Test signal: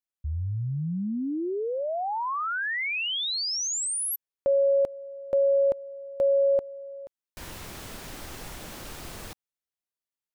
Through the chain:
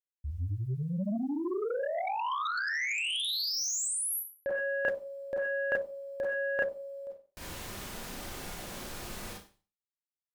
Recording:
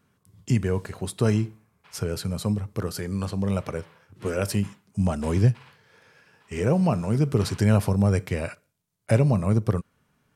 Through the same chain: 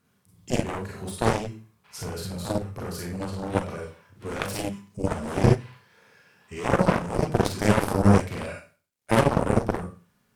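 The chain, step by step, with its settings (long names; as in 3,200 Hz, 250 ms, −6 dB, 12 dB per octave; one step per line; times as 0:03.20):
bit reduction 12 bits
four-comb reverb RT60 0.37 s, combs from 31 ms, DRR −2 dB
harmonic generator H 7 −12 dB, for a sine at −3.5 dBFS
level −2 dB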